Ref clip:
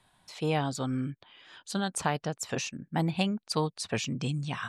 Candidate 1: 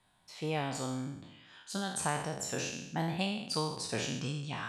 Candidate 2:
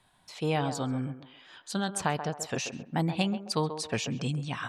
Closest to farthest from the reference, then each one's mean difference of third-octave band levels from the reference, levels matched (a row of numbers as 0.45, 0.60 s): 2, 1; 3.5, 8.0 dB